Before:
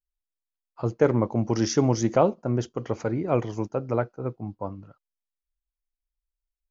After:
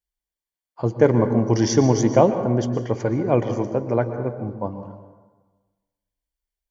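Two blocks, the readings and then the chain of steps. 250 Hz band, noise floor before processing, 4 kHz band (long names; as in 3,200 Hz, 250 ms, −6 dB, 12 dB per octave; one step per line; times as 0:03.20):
+5.5 dB, below −85 dBFS, +3.5 dB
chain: low-shelf EQ 83 Hz +9 dB
notch comb filter 1,300 Hz
dense smooth reverb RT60 1.3 s, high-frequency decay 0.5×, pre-delay 105 ms, DRR 9 dB
level +4.5 dB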